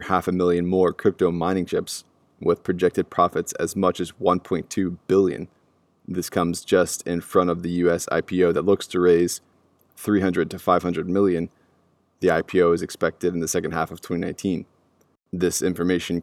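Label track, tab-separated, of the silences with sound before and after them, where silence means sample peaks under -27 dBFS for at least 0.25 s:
1.970000	2.420000	silence
5.430000	6.080000	silence
9.360000	10.010000	silence
11.450000	12.230000	silence
14.610000	15.330000	silence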